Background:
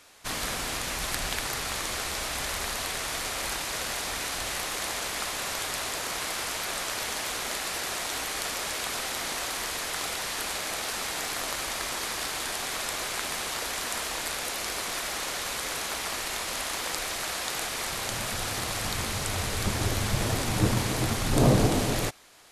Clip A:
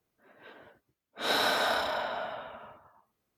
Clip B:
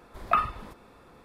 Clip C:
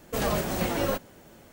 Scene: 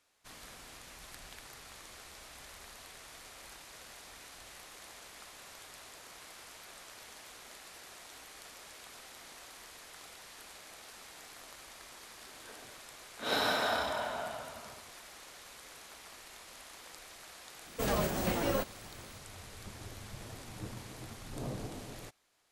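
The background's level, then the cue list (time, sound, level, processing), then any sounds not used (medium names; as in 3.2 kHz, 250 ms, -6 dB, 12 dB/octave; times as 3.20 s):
background -19.5 dB
12.02 s: add A -4 dB + bass shelf 230 Hz +8.5 dB
17.66 s: add C -4.5 dB
not used: B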